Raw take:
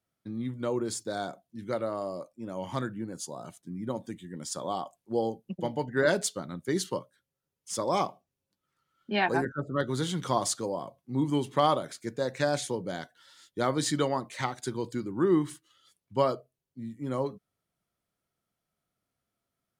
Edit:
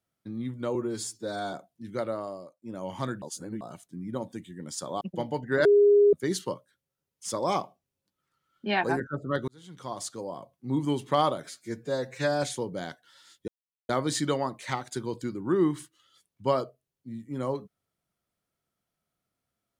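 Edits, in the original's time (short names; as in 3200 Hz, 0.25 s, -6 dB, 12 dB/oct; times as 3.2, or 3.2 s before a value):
0.75–1.27 stretch 1.5×
1.87–2.36 fade out, to -21 dB
2.96–3.35 reverse
4.75–5.46 cut
6.1–6.58 bleep 409 Hz -15 dBFS
9.93–11.16 fade in
11.89–12.55 stretch 1.5×
13.6 insert silence 0.41 s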